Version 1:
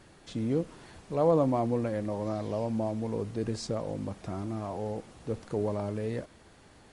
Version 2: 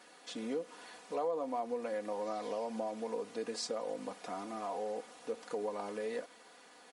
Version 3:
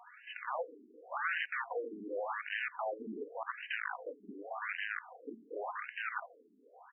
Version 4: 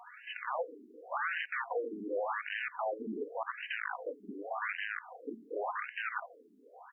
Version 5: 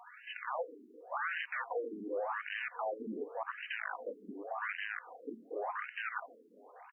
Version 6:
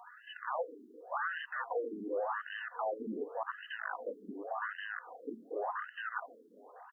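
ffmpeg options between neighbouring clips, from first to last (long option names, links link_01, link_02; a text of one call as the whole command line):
ffmpeg -i in.wav -af "highpass=480,aecho=1:1:4.1:0.71,acompressor=threshold=-34dB:ratio=4" out.wav
ffmpeg -i in.wav -af "aeval=exprs='(mod(44.7*val(0)+1,2)-1)/44.7':channel_layout=same,asubboost=boost=9.5:cutoff=100,afftfilt=real='re*between(b*sr/1024,290*pow(2200/290,0.5+0.5*sin(2*PI*0.88*pts/sr))/1.41,290*pow(2200/290,0.5+0.5*sin(2*PI*0.88*pts/sr))*1.41)':imag='im*between(b*sr/1024,290*pow(2200/290,0.5+0.5*sin(2*PI*0.88*pts/sr))/1.41,290*pow(2200/290,0.5+0.5*sin(2*PI*0.88*pts/sr))*1.41)':win_size=1024:overlap=0.75,volume=8dB" out.wav
ffmpeg -i in.wav -af "alimiter=level_in=6dB:limit=-24dB:level=0:latency=1:release=161,volume=-6dB,volume=4dB" out.wav
ffmpeg -i in.wav -af "aecho=1:1:1005:0.075,volume=-2dB" out.wav
ffmpeg -i in.wav -af "asuperstop=centerf=2300:order=4:qfactor=2,volume=1.5dB" out.wav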